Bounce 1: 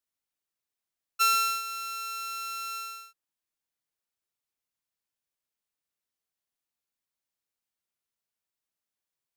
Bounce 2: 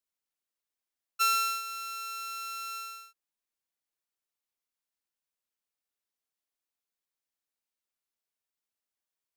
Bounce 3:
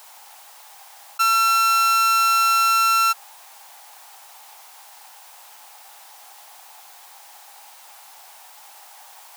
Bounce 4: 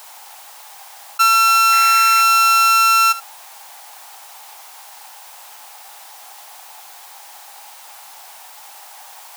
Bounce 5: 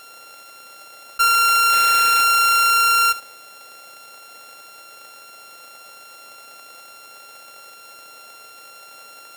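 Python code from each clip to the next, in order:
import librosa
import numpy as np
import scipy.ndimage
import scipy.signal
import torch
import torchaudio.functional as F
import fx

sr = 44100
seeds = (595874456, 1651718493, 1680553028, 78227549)

y1 = fx.peak_eq(x, sr, hz=110.0, db=-11.5, octaves=0.94)
y1 = y1 * librosa.db_to_amplitude(-2.5)
y2 = fx.highpass_res(y1, sr, hz=810.0, q=6.3)
y2 = fx.env_flatten(y2, sr, amount_pct=100)
y2 = y2 * librosa.db_to_amplitude(4.0)
y3 = y2 + 10.0 ** (-17.0 / 20.0) * np.pad(y2, (int(73 * sr / 1000.0), 0))[:len(y2)]
y3 = fx.spec_paint(y3, sr, seeds[0], shape='noise', start_s=1.72, length_s=0.51, low_hz=1300.0, high_hz=2700.0, level_db=-36.0)
y3 = y3 * librosa.db_to_amplitude(5.5)
y4 = np.r_[np.sort(y3[:len(y3) // 32 * 32].reshape(-1, 32), axis=1).ravel(), y3[len(y3) // 32 * 32:]]
y4 = y4 * librosa.db_to_amplitude(-3.0)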